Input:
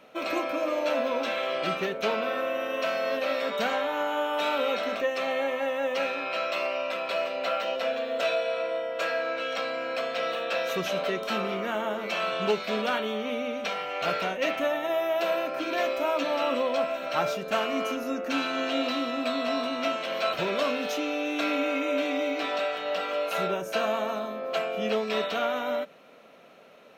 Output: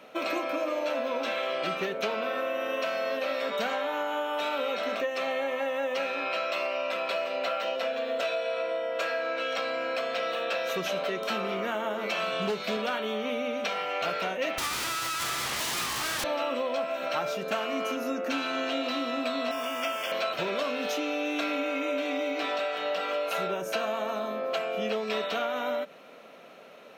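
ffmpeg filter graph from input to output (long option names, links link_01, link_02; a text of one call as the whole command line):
ffmpeg -i in.wav -filter_complex "[0:a]asettb=1/sr,asplit=3[link_01][link_02][link_03];[link_01]atrim=end=12.184[link_04];[link_02]atrim=start=12.18:end=12.77,asetpts=PTS-STARTPTS,afade=type=in:duration=0.004:curve=qsin,afade=type=out:start_time=0.586:duration=0.004:curve=qsin,bass=frequency=250:gain=6,treble=frequency=4000:gain=3,asoftclip=type=hard:threshold=-20dB,asplit=2[link_05][link_06];[link_06]adelay=30,volume=-13.5dB[link_07];[link_05][link_07]amix=inputs=2:normalize=0,atrim=end_sample=26019[link_08];[link_03]atrim=start=12.766[link_09];[link_04][link_08]acrossfade=duration=0.004:curve1=hsin:curve2=qsin[link_10];[link_10][link_09]acrossfade=duration=0.004:curve1=qsin:curve2=hsin,asettb=1/sr,asplit=3[link_11][link_12][link_13];[link_11]atrim=end=14.584[link_14];[link_12]atrim=start=14.58:end=16.24,asetpts=PTS-STARTPTS,afade=type=in:duration=0.004:curve=qsin,afade=type=out:start_time=1.656:duration=0.004:curve=qsin,asplit=2[link_15][link_16];[link_16]highpass=frequency=720:poles=1,volume=37dB,asoftclip=type=tanh:threshold=-14.5dB[link_17];[link_15][link_17]amix=inputs=2:normalize=0,lowpass=frequency=4500:poles=1,volume=-6dB,aeval=exprs='abs(val(0))':channel_layout=same[link_18];[link_13]atrim=start=16.236[link_19];[link_14][link_18]acrossfade=duration=0.004:curve1=hsin:curve2=qsin[link_20];[link_20][link_19]acrossfade=duration=0.004:curve1=qsin:curve2=hsin,asettb=1/sr,asplit=3[link_21][link_22][link_23];[link_21]atrim=end=19.514[link_24];[link_22]atrim=start=19.51:end=20.12,asetpts=PTS-STARTPTS,afade=type=in:duration=0.004:curve=qsin,afade=type=out:start_time=0.606:duration=0.004:curve=qsin,lowshelf=frequency=440:gain=-11.5,acrusher=bits=8:dc=4:mix=0:aa=0.000001,asuperstop=centerf=4000:order=12:qfactor=4.7[link_25];[link_23]atrim=start=20.116[link_26];[link_24][link_25]acrossfade=duration=0.004:curve1=hsin:curve2=qsin[link_27];[link_27][link_26]acrossfade=duration=0.004:curve1=qsin:curve2=hsin,highpass=frequency=150:poles=1,acompressor=threshold=-31dB:ratio=4,volume=3.5dB" out.wav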